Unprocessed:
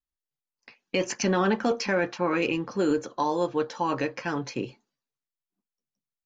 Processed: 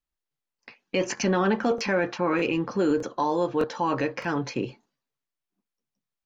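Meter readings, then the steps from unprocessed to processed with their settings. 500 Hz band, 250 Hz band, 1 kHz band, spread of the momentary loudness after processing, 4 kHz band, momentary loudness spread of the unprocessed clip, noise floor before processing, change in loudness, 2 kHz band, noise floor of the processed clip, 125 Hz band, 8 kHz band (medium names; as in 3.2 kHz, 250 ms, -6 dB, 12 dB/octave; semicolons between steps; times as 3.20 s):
+1.5 dB, +1.5 dB, +1.0 dB, 6 LU, -0.5 dB, 7 LU, under -85 dBFS, +1.0 dB, +0.5 dB, under -85 dBFS, +1.5 dB, no reading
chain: treble shelf 5 kHz -8 dB; in parallel at +2.5 dB: peak limiter -24.5 dBFS, peak gain reduction 11.5 dB; on the sum: crackling interface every 0.61 s, samples 1024, repeat, from 0.54 s; trim -2.5 dB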